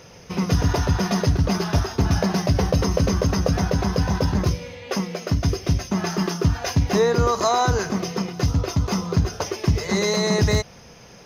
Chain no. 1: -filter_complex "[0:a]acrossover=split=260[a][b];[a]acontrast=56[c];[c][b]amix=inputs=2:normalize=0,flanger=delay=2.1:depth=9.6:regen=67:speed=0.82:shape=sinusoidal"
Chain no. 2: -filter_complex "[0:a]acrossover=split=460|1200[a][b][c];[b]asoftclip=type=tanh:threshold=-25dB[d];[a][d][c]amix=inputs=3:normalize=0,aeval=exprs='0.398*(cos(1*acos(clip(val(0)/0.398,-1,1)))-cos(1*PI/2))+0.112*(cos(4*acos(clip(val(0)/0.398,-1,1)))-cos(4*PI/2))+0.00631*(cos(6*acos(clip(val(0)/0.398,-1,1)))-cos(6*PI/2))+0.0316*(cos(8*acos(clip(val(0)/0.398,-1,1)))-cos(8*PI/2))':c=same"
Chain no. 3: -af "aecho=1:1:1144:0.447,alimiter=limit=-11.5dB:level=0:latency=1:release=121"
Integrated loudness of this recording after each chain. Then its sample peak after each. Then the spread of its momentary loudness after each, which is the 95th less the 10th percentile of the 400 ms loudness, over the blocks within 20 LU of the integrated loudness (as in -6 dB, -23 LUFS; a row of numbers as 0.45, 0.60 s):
-22.5, -21.0, -23.0 LUFS; -7.5, -5.0, -11.5 dBFS; 7, 5, 4 LU